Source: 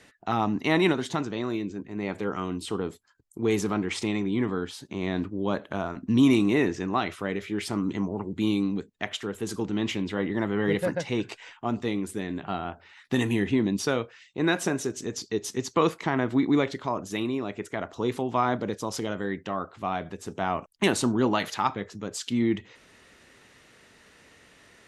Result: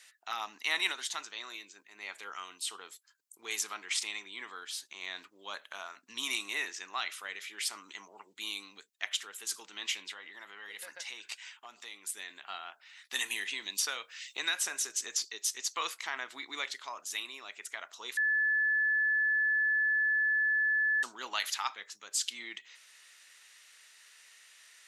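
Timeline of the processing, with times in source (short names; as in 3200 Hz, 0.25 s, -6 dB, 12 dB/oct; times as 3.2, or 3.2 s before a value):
10.11–12.17 compressor 5:1, threshold -29 dBFS
13.15–15.25 three-band squash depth 100%
18.17–21.03 bleep 1730 Hz -21.5 dBFS
whole clip: HPF 1400 Hz 12 dB/oct; high shelf 3500 Hz +11 dB; gain -4.5 dB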